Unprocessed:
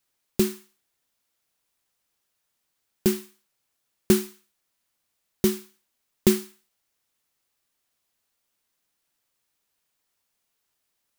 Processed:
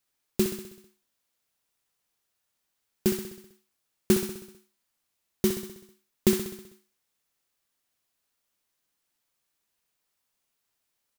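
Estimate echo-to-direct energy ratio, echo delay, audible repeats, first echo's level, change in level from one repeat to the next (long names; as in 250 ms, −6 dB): −6.0 dB, 64 ms, 6, −8.0 dB, −4.5 dB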